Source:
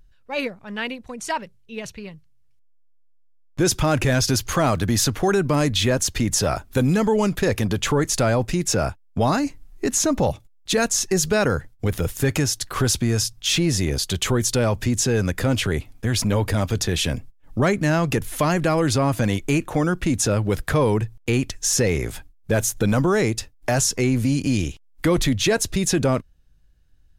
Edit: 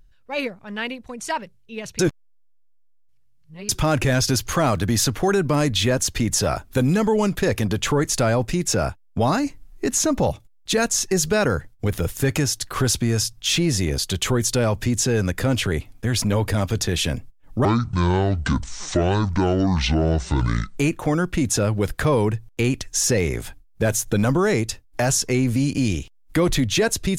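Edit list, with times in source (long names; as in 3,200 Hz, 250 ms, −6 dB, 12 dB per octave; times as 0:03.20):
0:01.99–0:03.69: reverse
0:17.65–0:19.46: play speed 58%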